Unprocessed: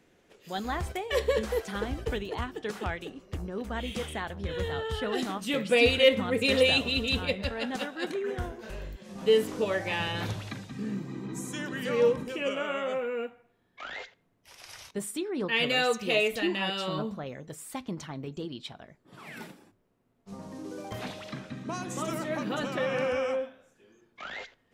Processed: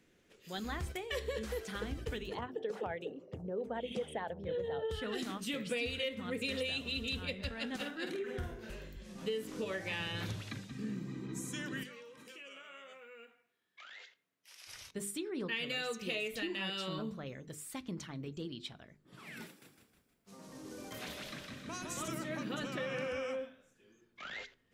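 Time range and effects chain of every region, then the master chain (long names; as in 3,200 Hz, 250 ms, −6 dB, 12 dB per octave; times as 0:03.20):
0:02.37–0:04.91: spectral envelope exaggerated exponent 1.5 + high-pass filter 110 Hz 24 dB per octave + flat-topped bell 640 Hz +11.5 dB 1.3 octaves
0:07.75–0:08.71: parametric band 6,900 Hz −3.5 dB 1.5 octaves + notch filter 1,100 Hz, Q 22 + double-tracking delay 49 ms −6 dB
0:11.83–0:14.67: high-pass filter 1,200 Hz 6 dB per octave + downward compressor 4 to 1, threshold −45 dBFS + double-tracking delay 22 ms −11 dB
0:19.46–0:22.08: high-pass filter 400 Hz 6 dB per octave + high-shelf EQ 12,000 Hz +9.5 dB + echo with shifted repeats 157 ms, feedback 49%, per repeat −42 Hz, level −3.5 dB
whole clip: parametric band 780 Hz −8 dB 1.2 octaves; mains-hum notches 50/100/150/200/250/300/350/400/450 Hz; downward compressor 6 to 1, threshold −31 dBFS; level −3 dB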